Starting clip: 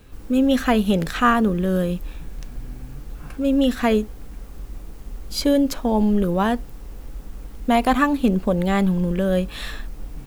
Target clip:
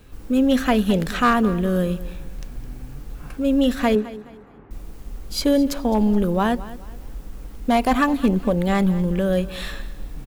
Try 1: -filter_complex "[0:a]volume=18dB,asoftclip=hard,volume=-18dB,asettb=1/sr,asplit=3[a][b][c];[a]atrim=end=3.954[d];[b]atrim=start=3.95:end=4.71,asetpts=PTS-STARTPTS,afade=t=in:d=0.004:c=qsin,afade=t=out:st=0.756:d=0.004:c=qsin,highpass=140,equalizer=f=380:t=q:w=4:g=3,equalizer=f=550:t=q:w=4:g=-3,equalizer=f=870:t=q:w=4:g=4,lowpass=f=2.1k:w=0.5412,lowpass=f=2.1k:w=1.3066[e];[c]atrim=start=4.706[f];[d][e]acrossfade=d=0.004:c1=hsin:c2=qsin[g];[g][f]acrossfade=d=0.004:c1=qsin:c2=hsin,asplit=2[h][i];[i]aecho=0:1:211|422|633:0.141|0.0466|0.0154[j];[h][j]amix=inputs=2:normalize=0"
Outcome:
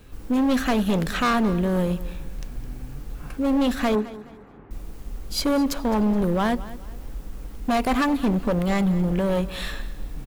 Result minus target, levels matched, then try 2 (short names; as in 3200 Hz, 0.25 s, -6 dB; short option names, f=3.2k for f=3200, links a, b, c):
overloaded stage: distortion +14 dB
-filter_complex "[0:a]volume=10.5dB,asoftclip=hard,volume=-10.5dB,asettb=1/sr,asplit=3[a][b][c];[a]atrim=end=3.954[d];[b]atrim=start=3.95:end=4.71,asetpts=PTS-STARTPTS,afade=t=in:d=0.004:c=qsin,afade=t=out:st=0.756:d=0.004:c=qsin,highpass=140,equalizer=f=380:t=q:w=4:g=3,equalizer=f=550:t=q:w=4:g=-3,equalizer=f=870:t=q:w=4:g=4,lowpass=f=2.1k:w=0.5412,lowpass=f=2.1k:w=1.3066[e];[c]atrim=start=4.706[f];[d][e]acrossfade=d=0.004:c1=hsin:c2=qsin[g];[g][f]acrossfade=d=0.004:c1=qsin:c2=hsin,asplit=2[h][i];[i]aecho=0:1:211|422|633:0.141|0.0466|0.0154[j];[h][j]amix=inputs=2:normalize=0"